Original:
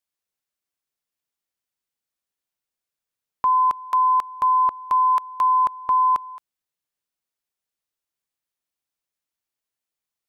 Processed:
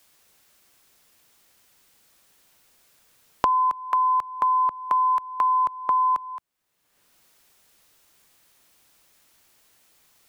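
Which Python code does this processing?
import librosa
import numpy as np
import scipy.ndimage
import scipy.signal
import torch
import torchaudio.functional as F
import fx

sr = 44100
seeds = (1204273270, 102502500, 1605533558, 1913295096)

y = fx.band_squash(x, sr, depth_pct=100)
y = y * librosa.db_to_amplitude(-3.0)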